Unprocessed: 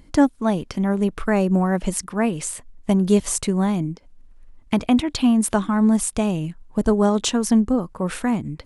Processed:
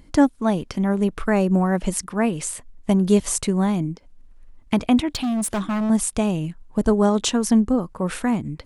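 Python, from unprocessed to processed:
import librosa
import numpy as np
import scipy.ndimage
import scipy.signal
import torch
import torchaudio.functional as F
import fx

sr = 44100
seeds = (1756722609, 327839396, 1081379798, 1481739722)

y = fx.clip_hard(x, sr, threshold_db=-20.5, at=(5.08, 5.9))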